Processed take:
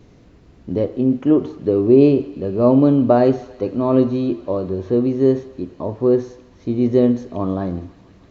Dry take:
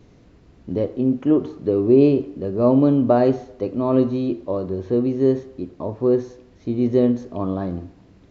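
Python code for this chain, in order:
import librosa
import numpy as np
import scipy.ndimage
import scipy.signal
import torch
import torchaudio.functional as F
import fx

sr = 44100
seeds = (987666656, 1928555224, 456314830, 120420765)

y = fx.echo_wet_highpass(x, sr, ms=160, feedback_pct=85, hz=1600.0, wet_db=-19.0)
y = F.gain(torch.from_numpy(y), 2.5).numpy()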